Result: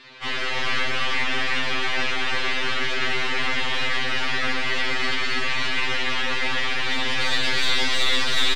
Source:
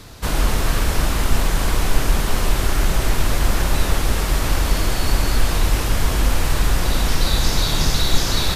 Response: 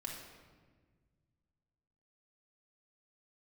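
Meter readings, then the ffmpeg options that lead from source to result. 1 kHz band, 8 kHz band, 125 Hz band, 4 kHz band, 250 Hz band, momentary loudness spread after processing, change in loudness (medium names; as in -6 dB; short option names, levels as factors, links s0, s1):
-2.0 dB, -11.0 dB, -17.5 dB, +2.0 dB, -8.0 dB, 3 LU, -2.0 dB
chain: -filter_complex "[0:a]equalizer=f=270:w=0.3:g=-9.5,crystalizer=i=9.5:c=0,highpass=f=160:w=0.5412,highpass=f=160:w=1.3066,equalizer=f=240:t=q:w=4:g=8,equalizer=f=460:t=q:w=4:g=10,equalizer=f=1900:t=q:w=4:g=5,lowpass=f=3000:w=0.5412,lowpass=f=3000:w=1.3066,aeval=exprs='(tanh(4.47*val(0)+0.55)-tanh(0.55))/4.47':c=same,aecho=1:1:333:0.668,asplit=2[s0][s1];[1:a]atrim=start_sample=2205,asetrate=61740,aresample=44100[s2];[s1][s2]afir=irnorm=-1:irlink=0,volume=0.891[s3];[s0][s3]amix=inputs=2:normalize=0,afftfilt=real='re*2.45*eq(mod(b,6),0)':imag='im*2.45*eq(mod(b,6),0)':win_size=2048:overlap=0.75,volume=0.708"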